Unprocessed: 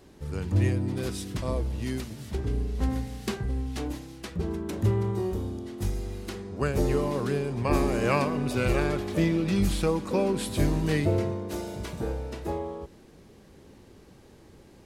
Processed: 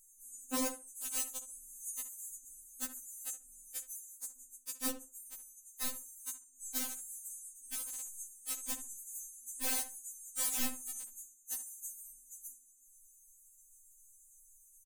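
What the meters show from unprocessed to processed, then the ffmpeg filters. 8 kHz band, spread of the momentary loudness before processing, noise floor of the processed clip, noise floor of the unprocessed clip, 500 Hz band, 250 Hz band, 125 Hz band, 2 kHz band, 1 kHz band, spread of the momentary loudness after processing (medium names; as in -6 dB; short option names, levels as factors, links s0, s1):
+6.5 dB, 10 LU, -63 dBFS, -53 dBFS, -24.5 dB, -20.5 dB, under -40 dB, -14.0 dB, -16.5 dB, 15 LU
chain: -filter_complex "[0:a]bass=f=250:g=-7,treble=f=4000:g=12,alimiter=limit=0.119:level=0:latency=1:release=10,afftfilt=real='re*(1-between(b*sr/4096,160,6000))':imag='im*(1-between(b*sr/4096,160,6000))':win_size=4096:overlap=0.75,equalizer=f=2900:t=o:w=1.3:g=-13.5,aeval=exprs='(mod(20*val(0)+1,2)-1)/20':c=same,asplit=2[s0][s1];[s1]adelay=67,lowpass=f=1500:p=1,volume=0.355,asplit=2[s2][s3];[s3]adelay=67,lowpass=f=1500:p=1,volume=0.21,asplit=2[s4][s5];[s5]adelay=67,lowpass=f=1500:p=1,volume=0.21[s6];[s2][s4][s6]amix=inputs=3:normalize=0[s7];[s0][s7]amix=inputs=2:normalize=0,afftfilt=real='re*3.46*eq(mod(b,12),0)':imag='im*3.46*eq(mod(b,12),0)':win_size=2048:overlap=0.75,volume=1.19"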